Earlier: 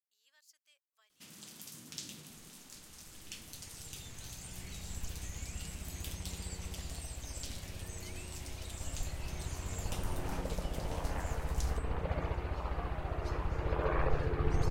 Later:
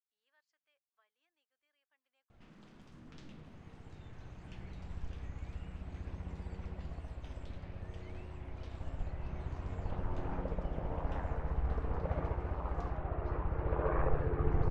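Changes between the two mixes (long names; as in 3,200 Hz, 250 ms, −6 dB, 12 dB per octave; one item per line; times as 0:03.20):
first sound: entry +1.20 s
master: add low-pass filter 1,500 Hz 12 dB per octave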